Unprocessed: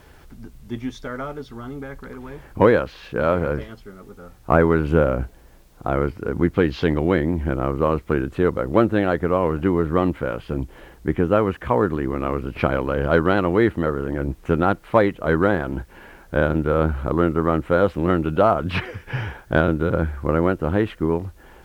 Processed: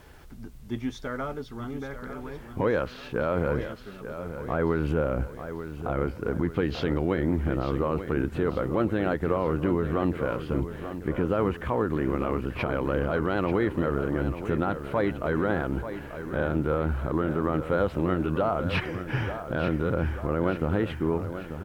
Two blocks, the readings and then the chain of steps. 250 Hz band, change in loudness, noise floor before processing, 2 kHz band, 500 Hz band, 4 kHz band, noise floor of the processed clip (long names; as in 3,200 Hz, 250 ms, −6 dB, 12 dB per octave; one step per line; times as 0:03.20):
−6.0 dB, −7.0 dB, −48 dBFS, −7.0 dB, −7.0 dB, −4.5 dB, −43 dBFS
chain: brickwall limiter −13 dBFS, peak gain reduction 11 dB
on a send: repeating echo 888 ms, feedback 51%, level −10.5 dB
on the sum: level −2.5 dB